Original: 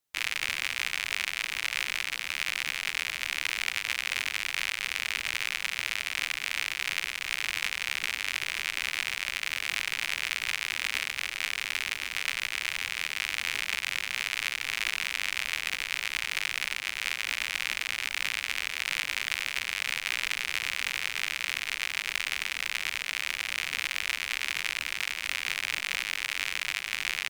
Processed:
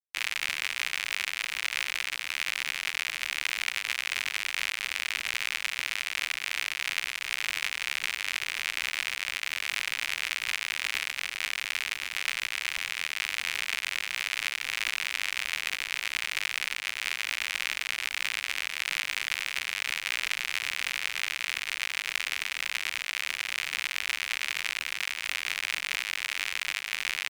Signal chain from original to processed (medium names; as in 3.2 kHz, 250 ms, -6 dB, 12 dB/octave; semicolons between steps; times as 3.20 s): crossover distortion -53 dBFS